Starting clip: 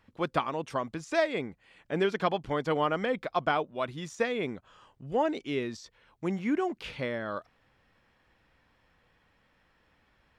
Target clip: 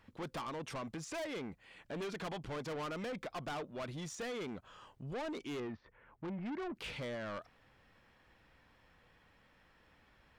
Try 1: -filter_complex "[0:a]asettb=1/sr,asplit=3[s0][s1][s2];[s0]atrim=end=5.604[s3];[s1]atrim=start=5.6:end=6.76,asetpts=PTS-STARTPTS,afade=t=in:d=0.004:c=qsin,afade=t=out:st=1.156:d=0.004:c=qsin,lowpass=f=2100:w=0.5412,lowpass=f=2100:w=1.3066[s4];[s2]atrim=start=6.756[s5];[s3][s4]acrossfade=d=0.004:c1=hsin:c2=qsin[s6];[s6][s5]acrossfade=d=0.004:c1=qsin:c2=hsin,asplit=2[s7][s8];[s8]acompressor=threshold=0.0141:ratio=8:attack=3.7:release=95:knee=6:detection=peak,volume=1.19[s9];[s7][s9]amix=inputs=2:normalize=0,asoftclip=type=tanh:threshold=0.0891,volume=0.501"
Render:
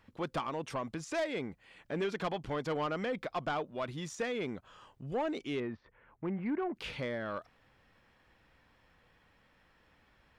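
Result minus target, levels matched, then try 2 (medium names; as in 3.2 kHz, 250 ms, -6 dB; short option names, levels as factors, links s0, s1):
saturation: distortion -9 dB
-filter_complex "[0:a]asettb=1/sr,asplit=3[s0][s1][s2];[s0]atrim=end=5.604[s3];[s1]atrim=start=5.6:end=6.76,asetpts=PTS-STARTPTS,afade=t=in:d=0.004:c=qsin,afade=t=out:st=1.156:d=0.004:c=qsin,lowpass=f=2100:w=0.5412,lowpass=f=2100:w=1.3066[s4];[s2]atrim=start=6.756[s5];[s3][s4]acrossfade=d=0.004:c1=hsin:c2=qsin[s6];[s6][s5]acrossfade=d=0.004:c1=qsin:c2=hsin,asplit=2[s7][s8];[s8]acompressor=threshold=0.0141:ratio=8:attack=3.7:release=95:knee=6:detection=peak,volume=1.19[s9];[s7][s9]amix=inputs=2:normalize=0,asoftclip=type=tanh:threshold=0.0251,volume=0.501"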